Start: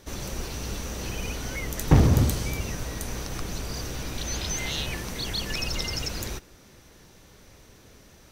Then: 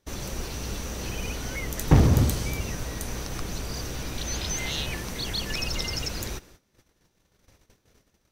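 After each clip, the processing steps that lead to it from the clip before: gate -49 dBFS, range -19 dB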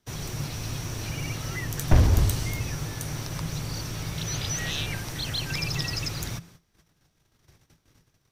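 frequency shift -170 Hz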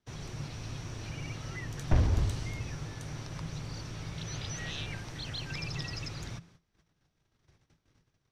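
air absorption 75 m; gain -7 dB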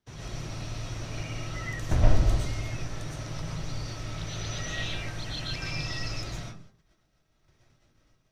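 reverb RT60 0.35 s, pre-delay 80 ms, DRR -4.5 dB; gain -1 dB

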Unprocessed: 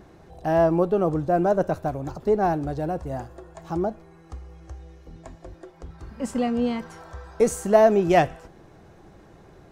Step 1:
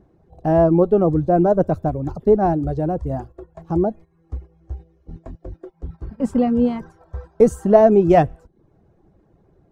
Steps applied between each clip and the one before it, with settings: reverb removal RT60 0.56 s; gate -43 dBFS, range -13 dB; tilt shelf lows +8 dB; gain +1.5 dB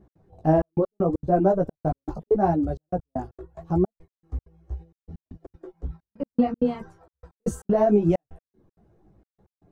limiter -10 dBFS, peak gain reduction 9 dB; chorus voices 2, 0.77 Hz, delay 15 ms, depth 4.8 ms; step gate "x.xxxxxx..x..x" 195 bpm -60 dB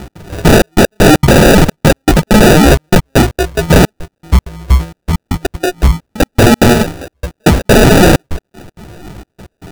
sine folder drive 17 dB, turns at -8.5 dBFS; sample-and-hold 41×; gain +7 dB

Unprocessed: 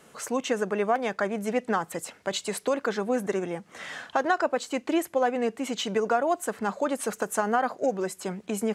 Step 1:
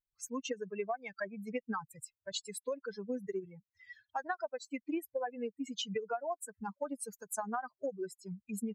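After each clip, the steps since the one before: per-bin expansion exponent 3; compressor 6:1, threshold -31 dBFS, peak gain reduction 9 dB; gain -1.5 dB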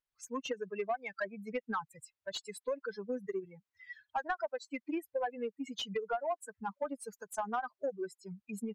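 overdrive pedal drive 11 dB, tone 2100 Hz, clips at -23 dBFS

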